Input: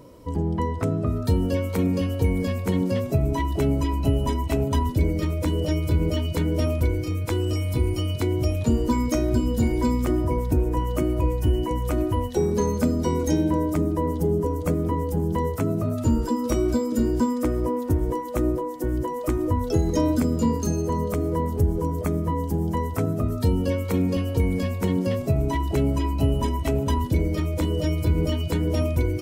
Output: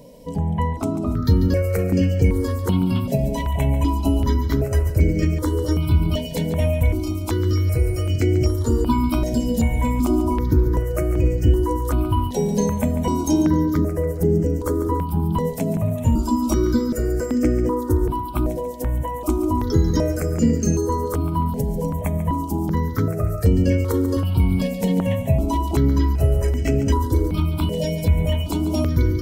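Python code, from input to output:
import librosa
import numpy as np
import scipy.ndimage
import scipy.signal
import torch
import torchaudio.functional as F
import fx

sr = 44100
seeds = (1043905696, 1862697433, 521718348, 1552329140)

p1 = x + fx.echo_feedback(x, sr, ms=142, feedback_pct=47, wet_db=-12, dry=0)
p2 = fx.phaser_held(p1, sr, hz=2.6, low_hz=340.0, high_hz=3700.0)
y = p2 * librosa.db_to_amplitude(5.5)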